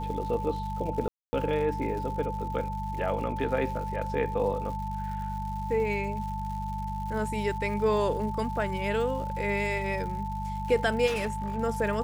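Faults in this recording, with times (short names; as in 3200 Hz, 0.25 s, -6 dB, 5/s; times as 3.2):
crackle 200/s -39 dBFS
hum 50 Hz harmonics 4 -35 dBFS
tone 880 Hz -34 dBFS
1.08–1.33 gap 0.25 s
11.06–11.59 clipped -26 dBFS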